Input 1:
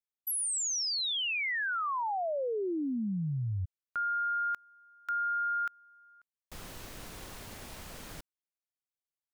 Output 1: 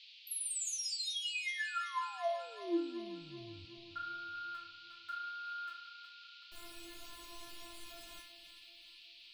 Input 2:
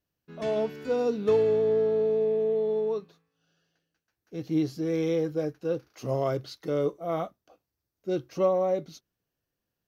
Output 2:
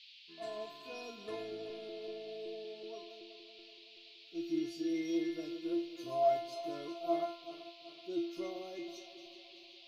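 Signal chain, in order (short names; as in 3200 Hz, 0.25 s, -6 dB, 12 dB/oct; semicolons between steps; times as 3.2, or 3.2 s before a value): regenerating reverse delay 0.189 s, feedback 70%, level -12 dB; metallic resonator 340 Hz, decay 0.57 s, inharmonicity 0.002; band noise 2400–4600 Hz -68 dBFS; gain +10.5 dB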